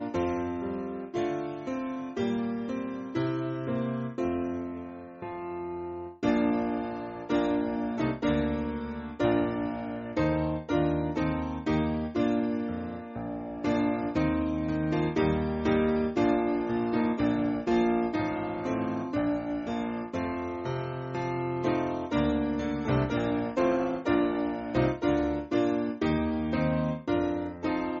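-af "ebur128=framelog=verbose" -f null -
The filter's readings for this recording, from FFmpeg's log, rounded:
Integrated loudness:
  I:         -29.6 LUFS
  Threshold: -39.6 LUFS
Loudness range:
  LRA:         4.7 LU
  Threshold: -49.5 LUFS
  LRA low:   -32.2 LUFS
  LRA high:  -27.6 LUFS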